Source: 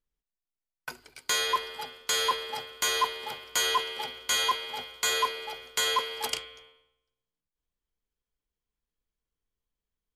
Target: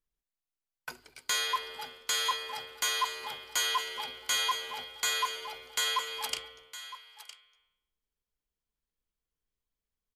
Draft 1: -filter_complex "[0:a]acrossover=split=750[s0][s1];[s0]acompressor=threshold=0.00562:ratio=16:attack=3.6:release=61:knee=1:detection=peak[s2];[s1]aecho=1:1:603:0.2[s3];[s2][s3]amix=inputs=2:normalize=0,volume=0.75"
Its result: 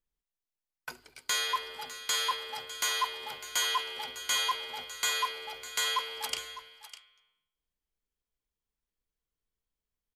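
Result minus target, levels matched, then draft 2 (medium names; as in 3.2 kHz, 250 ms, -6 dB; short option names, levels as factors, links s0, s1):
echo 358 ms early
-filter_complex "[0:a]acrossover=split=750[s0][s1];[s0]acompressor=threshold=0.00562:ratio=16:attack=3.6:release=61:knee=1:detection=peak[s2];[s1]aecho=1:1:961:0.2[s3];[s2][s3]amix=inputs=2:normalize=0,volume=0.75"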